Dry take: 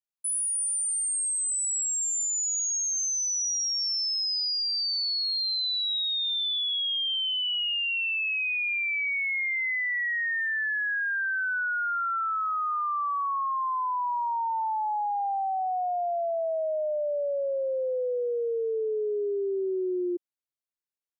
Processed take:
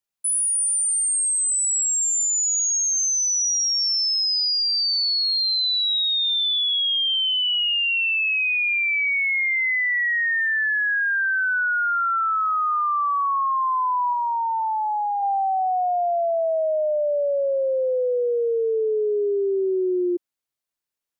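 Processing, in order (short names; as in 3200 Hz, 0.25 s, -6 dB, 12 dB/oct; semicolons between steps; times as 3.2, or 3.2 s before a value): 14.13–15.23 low shelf 400 Hz -10.5 dB; gain +6.5 dB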